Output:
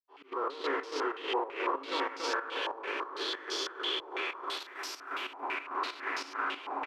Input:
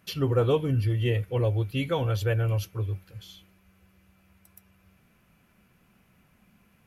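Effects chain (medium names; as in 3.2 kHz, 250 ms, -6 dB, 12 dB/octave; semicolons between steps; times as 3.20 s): spectral sustain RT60 2.51 s; recorder AGC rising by 35 dB/s; peak limiter -18 dBFS, peak gain reduction 9 dB; bit crusher 5-bit; rippled Chebyshev high-pass 270 Hz, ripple 9 dB; slow attack 224 ms; trance gate "x.x.x.x." 94 bpm -12 dB; feedback delay 282 ms, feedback 27%, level -4.5 dB; step-sequenced low-pass 6 Hz 870–5200 Hz; trim -2 dB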